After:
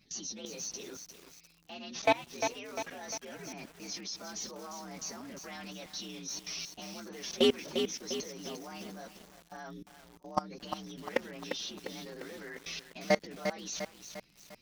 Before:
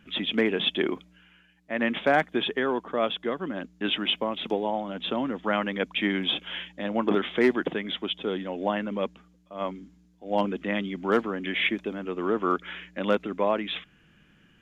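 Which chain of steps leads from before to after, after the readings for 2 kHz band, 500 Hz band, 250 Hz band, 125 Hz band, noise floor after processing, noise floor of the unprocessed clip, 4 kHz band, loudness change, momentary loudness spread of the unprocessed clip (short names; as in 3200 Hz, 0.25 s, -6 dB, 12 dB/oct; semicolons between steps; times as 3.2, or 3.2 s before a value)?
-11.5 dB, -9.0 dB, -12.5 dB, -10.0 dB, -63 dBFS, -60 dBFS, -9.0 dB, -9.0 dB, 10 LU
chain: inharmonic rescaling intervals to 122%; level quantiser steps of 23 dB; high shelf 2100 Hz +8 dB; lo-fi delay 0.35 s, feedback 55%, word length 8-bit, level -6.5 dB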